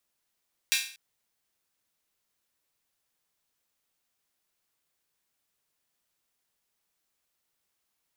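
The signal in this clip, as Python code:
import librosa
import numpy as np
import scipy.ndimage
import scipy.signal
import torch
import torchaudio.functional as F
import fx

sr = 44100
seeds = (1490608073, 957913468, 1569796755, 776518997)

y = fx.drum_hat_open(sr, length_s=0.24, from_hz=2400.0, decay_s=0.45)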